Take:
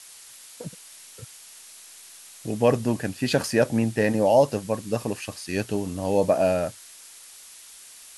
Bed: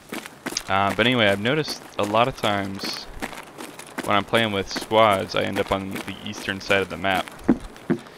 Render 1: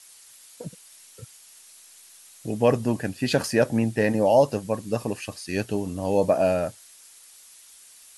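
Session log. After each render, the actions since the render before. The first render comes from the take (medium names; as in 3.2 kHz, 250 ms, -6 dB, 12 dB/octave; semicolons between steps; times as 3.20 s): noise reduction 6 dB, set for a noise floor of -47 dBFS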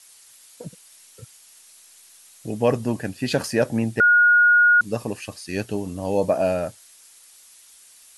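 4.00–4.81 s: bleep 1.44 kHz -11.5 dBFS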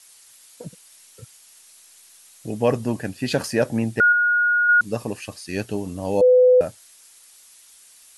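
4.08–4.69 s: doubling 42 ms -8.5 dB; 6.21–6.61 s: bleep 503 Hz -10 dBFS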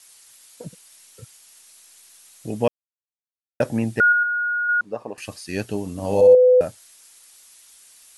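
2.68–3.60 s: mute; 4.23–5.18 s: band-pass filter 760 Hz, Q 1; 5.92–6.35 s: flutter echo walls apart 10.6 m, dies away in 0.71 s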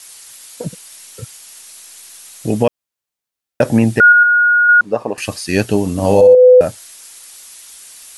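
compression 3:1, threshold -17 dBFS, peak gain reduction 7 dB; loudness maximiser +12 dB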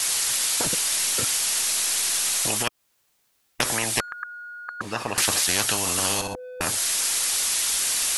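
compression 1.5:1, threshold -21 dBFS, peak gain reduction 6 dB; spectrum-flattening compressor 10:1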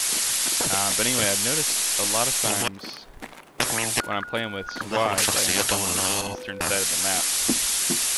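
add bed -8 dB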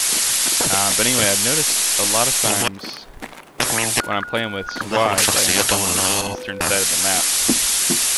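trim +5.5 dB; peak limiter -1 dBFS, peak gain reduction 2.5 dB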